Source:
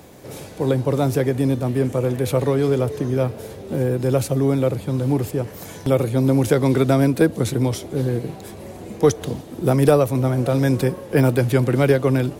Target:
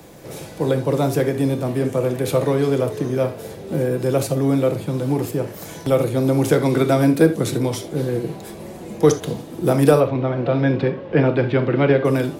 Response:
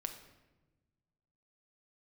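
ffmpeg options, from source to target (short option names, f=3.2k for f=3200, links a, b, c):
-filter_complex "[0:a]asettb=1/sr,asplit=3[a][b][c];[a]atrim=end=10.004[d];[b]atrim=start=10:end=12.05,asetpts=PTS-STARTPTS,afade=t=in:d=0.004:c=qsin,afade=t=out:st=2.046:d=0.004:c=qsin,lowpass=f=3.6k:w=0.5412,lowpass=f=3.6k:w=1.3066[e];[c]atrim=start=12.046[f];[d][e]acrossfade=d=0.004:c1=hsin:c2=qsin[g];[g][f]acrossfade=d=0.004:c1=qsin:c2=hsin,acrossover=split=110|740|1800[h][i][j][k];[h]acompressor=threshold=-44dB:ratio=6[l];[l][i][j][k]amix=inputs=4:normalize=0[m];[1:a]atrim=start_sample=2205,atrim=end_sample=3969[n];[m][n]afir=irnorm=-1:irlink=0,volume=3dB"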